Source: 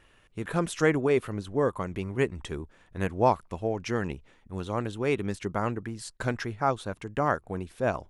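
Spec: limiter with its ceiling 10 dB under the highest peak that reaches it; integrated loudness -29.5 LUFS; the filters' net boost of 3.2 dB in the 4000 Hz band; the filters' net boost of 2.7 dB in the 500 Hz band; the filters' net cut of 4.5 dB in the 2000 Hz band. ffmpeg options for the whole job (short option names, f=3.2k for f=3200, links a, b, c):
-af "equalizer=f=500:t=o:g=3.5,equalizer=f=2k:t=o:g=-7.5,equalizer=f=4k:t=o:g=6.5,volume=2dB,alimiter=limit=-16dB:level=0:latency=1"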